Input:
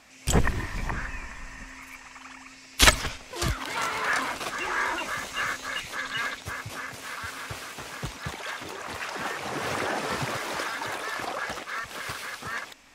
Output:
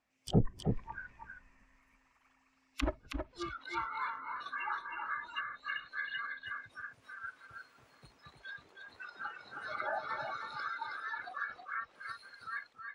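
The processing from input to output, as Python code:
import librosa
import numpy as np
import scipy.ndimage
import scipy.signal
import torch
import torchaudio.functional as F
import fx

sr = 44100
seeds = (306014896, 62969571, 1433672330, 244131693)

p1 = fx.rattle_buzz(x, sr, strikes_db=-27.0, level_db=-23.0)
p2 = fx.noise_reduce_blind(p1, sr, reduce_db=23)
p3 = fx.env_lowpass_down(p2, sr, base_hz=400.0, full_db=-24.5)
p4 = fx.high_shelf(p3, sr, hz=2900.0, db=-9.5)
p5 = p4 + fx.echo_single(p4, sr, ms=319, db=-5.5, dry=0)
y = p5 * librosa.db_to_amplitude(-1.5)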